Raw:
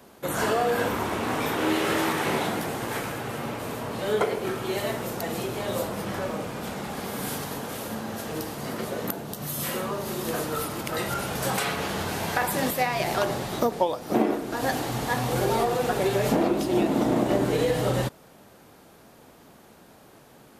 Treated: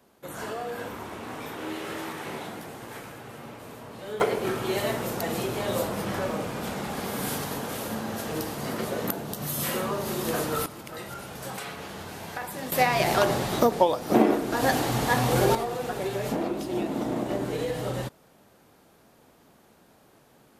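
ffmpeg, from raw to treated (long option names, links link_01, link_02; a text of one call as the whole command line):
ffmpeg -i in.wav -af "asetnsamples=nb_out_samples=441:pad=0,asendcmd='4.2 volume volume 1dB;10.66 volume volume -9.5dB;12.72 volume volume 3dB;15.55 volume volume -6dB',volume=-10dB" out.wav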